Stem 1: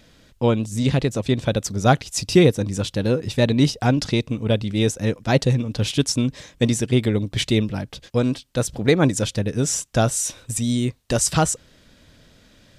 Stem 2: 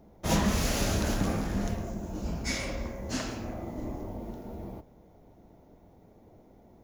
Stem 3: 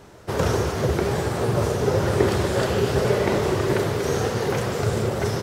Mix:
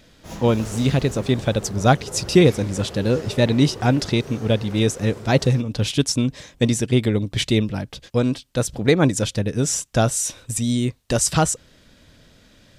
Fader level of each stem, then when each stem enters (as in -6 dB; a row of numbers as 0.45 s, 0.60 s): +0.5 dB, -10.0 dB, -14.5 dB; 0.00 s, 0.00 s, 0.20 s